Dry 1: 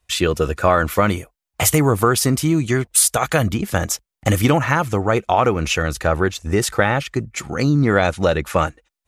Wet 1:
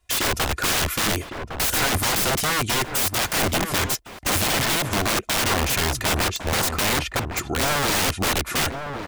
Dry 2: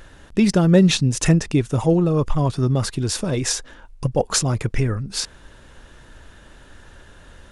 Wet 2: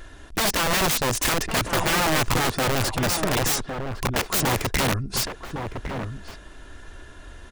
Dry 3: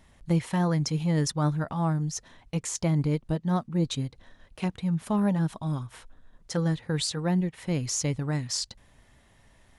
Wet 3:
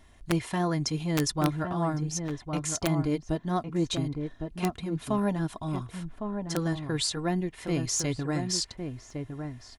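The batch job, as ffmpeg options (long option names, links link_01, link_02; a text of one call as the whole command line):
ffmpeg -i in.wav -filter_complex "[0:a]aecho=1:1:2.9:0.45,aeval=exprs='(mod(7.08*val(0)+1,2)-1)/7.08':channel_layout=same,asplit=2[link_01][link_02];[link_02]adelay=1108,volume=-6dB,highshelf=frequency=4000:gain=-24.9[link_03];[link_01][link_03]amix=inputs=2:normalize=0" out.wav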